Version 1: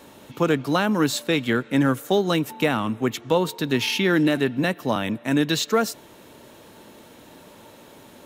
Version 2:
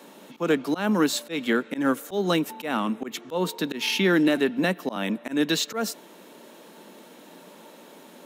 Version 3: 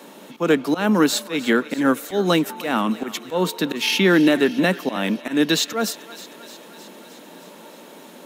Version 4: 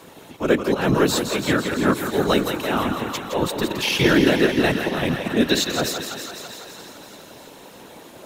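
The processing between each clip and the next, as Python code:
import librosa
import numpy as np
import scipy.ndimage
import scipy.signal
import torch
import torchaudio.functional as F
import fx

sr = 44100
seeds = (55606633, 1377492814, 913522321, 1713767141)

y1 = scipy.signal.sosfilt(scipy.signal.cheby1(4, 1.0, 180.0, 'highpass', fs=sr, output='sos'), x)
y1 = fx.auto_swell(y1, sr, attack_ms=136.0)
y2 = fx.echo_thinned(y1, sr, ms=309, feedback_pct=68, hz=690.0, wet_db=-16.0)
y2 = y2 * librosa.db_to_amplitude(5.0)
y3 = fx.echo_thinned(y2, sr, ms=167, feedback_pct=73, hz=200.0, wet_db=-7)
y3 = fx.whisperise(y3, sr, seeds[0])
y3 = y3 * librosa.db_to_amplitude(-1.5)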